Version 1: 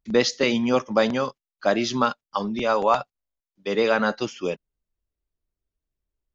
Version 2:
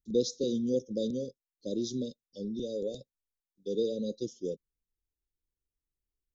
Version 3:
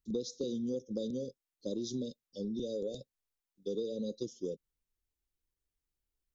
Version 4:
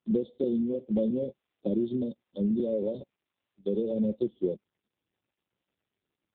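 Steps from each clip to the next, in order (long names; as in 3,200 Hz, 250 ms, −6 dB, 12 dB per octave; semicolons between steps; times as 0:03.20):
Chebyshev band-stop filter 520–3,700 Hz, order 5; parametric band 4,500 Hz −9 dB 0.32 octaves; level −7 dB
downward compressor 6 to 1, threshold −34 dBFS, peak gain reduction 12 dB; level +1 dB
hollow resonant body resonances 210/360/560 Hz, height 8 dB, ringing for 50 ms; level +4.5 dB; AMR narrowband 5.9 kbit/s 8,000 Hz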